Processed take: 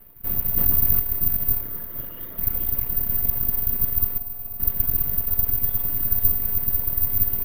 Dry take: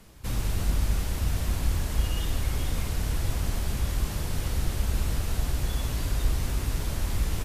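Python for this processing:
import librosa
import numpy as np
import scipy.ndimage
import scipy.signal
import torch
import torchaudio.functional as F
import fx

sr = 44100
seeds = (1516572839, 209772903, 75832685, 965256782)

y = fx.dereverb_blind(x, sr, rt60_s=1.1)
y = np.abs(y)
y = fx.cabinet(y, sr, low_hz=250.0, low_slope=12, high_hz=6800.0, hz=(810.0, 2600.0, 4400.0), db=(-7, -10, -9), at=(1.61, 2.38))
y = fx.vowel_filter(y, sr, vowel='a', at=(4.18, 4.6))
y = fx.air_absorb(y, sr, metres=390.0)
y = fx.echo_heads(y, sr, ms=241, heads='all three', feedback_pct=41, wet_db=-19.0)
y = (np.kron(y[::3], np.eye(3)[0]) * 3)[:len(y)]
y = fx.env_flatten(y, sr, amount_pct=70, at=(0.57, 1.0))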